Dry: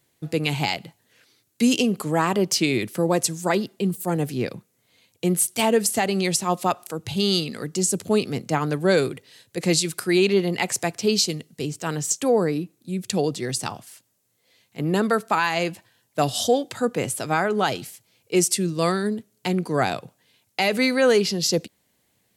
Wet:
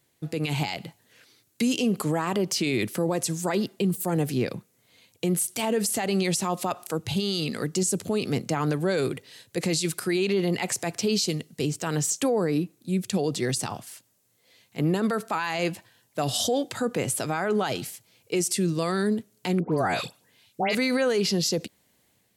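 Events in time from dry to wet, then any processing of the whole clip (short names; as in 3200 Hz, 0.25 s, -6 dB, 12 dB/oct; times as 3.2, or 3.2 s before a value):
19.6–20.75 dispersion highs, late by 0.127 s, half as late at 1800 Hz
whole clip: limiter -18.5 dBFS; AGC gain up to 3.5 dB; gain -1.5 dB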